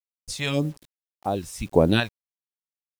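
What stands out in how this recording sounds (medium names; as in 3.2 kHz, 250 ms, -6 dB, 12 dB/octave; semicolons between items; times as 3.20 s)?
phasing stages 2, 1.8 Hz, lowest notch 270–3200 Hz; random-step tremolo 3.5 Hz, depth 70%; a quantiser's noise floor 10-bit, dither none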